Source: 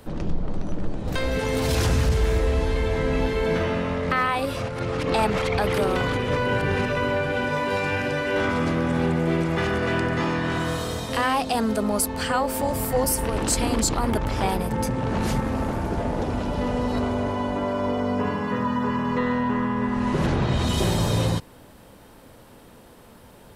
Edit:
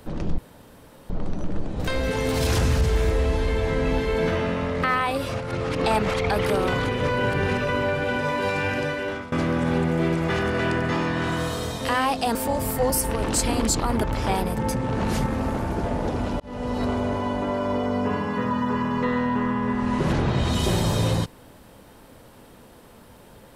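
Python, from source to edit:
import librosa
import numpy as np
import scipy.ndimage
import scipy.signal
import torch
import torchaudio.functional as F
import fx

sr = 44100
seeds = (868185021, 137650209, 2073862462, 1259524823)

y = fx.edit(x, sr, fx.insert_room_tone(at_s=0.38, length_s=0.72),
    fx.fade_out_to(start_s=8.11, length_s=0.49, floor_db=-19.0),
    fx.cut(start_s=11.63, length_s=0.86),
    fx.fade_in_span(start_s=16.54, length_s=0.55, curve='qsin'), tone=tone)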